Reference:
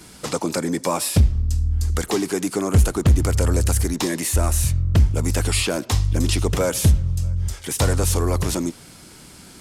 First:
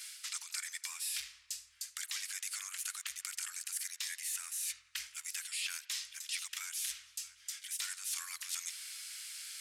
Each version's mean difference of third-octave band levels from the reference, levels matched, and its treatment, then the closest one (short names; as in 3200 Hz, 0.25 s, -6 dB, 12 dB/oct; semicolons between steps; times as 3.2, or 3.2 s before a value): 19.0 dB: inverse Chebyshev high-pass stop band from 540 Hz, stop band 60 dB; reverse; compressor 5:1, threshold -39 dBFS, peak gain reduction 17.5 dB; reverse; dark delay 85 ms, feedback 83%, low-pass 2900 Hz, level -22 dB; gain +1 dB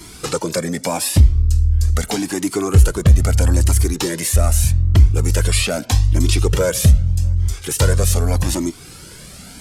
2.0 dB: bell 950 Hz -3 dB 1 oct; in parallel at -3 dB: compressor, threshold -31 dBFS, peak gain reduction 18.5 dB; on the sum: cascading flanger rising 0.81 Hz; gain +6 dB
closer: second